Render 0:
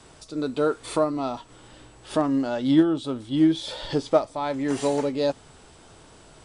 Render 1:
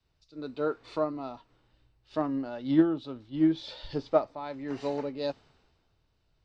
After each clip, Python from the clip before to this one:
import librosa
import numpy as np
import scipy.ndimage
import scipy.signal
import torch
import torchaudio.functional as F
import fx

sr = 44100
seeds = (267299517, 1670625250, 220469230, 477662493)

y = scipy.signal.sosfilt(scipy.signal.butter(4, 4800.0, 'lowpass', fs=sr, output='sos'), x)
y = fx.notch(y, sr, hz=3300.0, q=10.0)
y = fx.band_widen(y, sr, depth_pct=70)
y = y * librosa.db_to_amplitude(-8.0)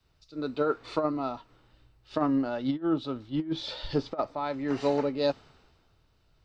y = fx.peak_eq(x, sr, hz=1300.0, db=4.5, octaves=0.2)
y = fx.over_compress(y, sr, threshold_db=-28.0, ratio=-0.5)
y = y * librosa.db_to_amplitude(3.0)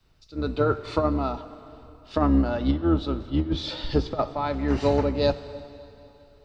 y = fx.octave_divider(x, sr, octaves=2, level_db=0.0)
y = fx.rev_plate(y, sr, seeds[0], rt60_s=3.1, hf_ratio=0.9, predelay_ms=0, drr_db=13.0)
y = y * librosa.db_to_amplitude(4.0)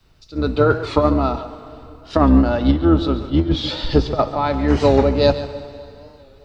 y = x + 10.0 ** (-13.0 / 20.0) * np.pad(x, (int(140 * sr / 1000.0), 0))[:len(x)]
y = fx.record_warp(y, sr, rpm=45.0, depth_cents=100.0)
y = y * librosa.db_to_amplitude(7.5)